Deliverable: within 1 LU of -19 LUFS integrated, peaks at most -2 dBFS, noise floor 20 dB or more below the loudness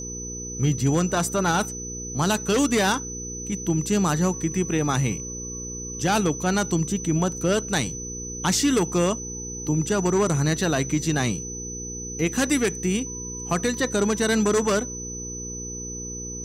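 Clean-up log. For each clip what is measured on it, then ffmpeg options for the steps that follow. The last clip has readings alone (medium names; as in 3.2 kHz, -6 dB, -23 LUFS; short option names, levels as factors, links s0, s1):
hum 60 Hz; highest harmonic 480 Hz; hum level -35 dBFS; steady tone 6 kHz; tone level -33 dBFS; loudness -24.5 LUFS; peak level -10.5 dBFS; loudness target -19.0 LUFS
-> -af "bandreject=f=60:t=h:w=4,bandreject=f=120:t=h:w=4,bandreject=f=180:t=h:w=4,bandreject=f=240:t=h:w=4,bandreject=f=300:t=h:w=4,bandreject=f=360:t=h:w=4,bandreject=f=420:t=h:w=4,bandreject=f=480:t=h:w=4"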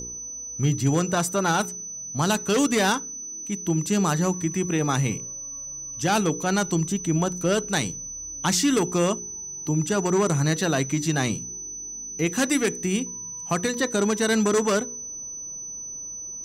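hum not found; steady tone 6 kHz; tone level -33 dBFS
-> -af "bandreject=f=6000:w=30"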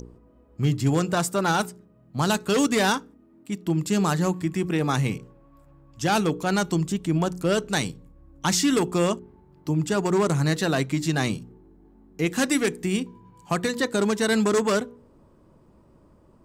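steady tone not found; loudness -24.5 LUFS; peak level -10.5 dBFS; loudness target -19.0 LUFS
-> -af "volume=1.88"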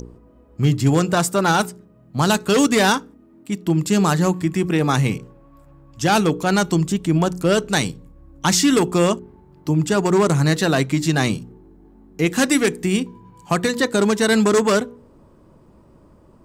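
loudness -19.0 LUFS; peak level -5.0 dBFS; noise floor -51 dBFS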